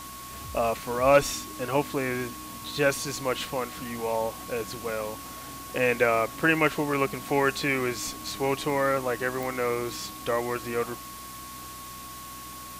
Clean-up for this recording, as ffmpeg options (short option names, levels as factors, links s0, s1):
-af "adeclick=t=4,bandreject=f=62.5:t=h:w=4,bandreject=f=125:t=h:w=4,bandreject=f=187.5:t=h:w=4,bandreject=f=250:t=h:w=4,bandreject=f=312.5:t=h:w=4,bandreject=f=1100:w=30,afwtdn=0.0071"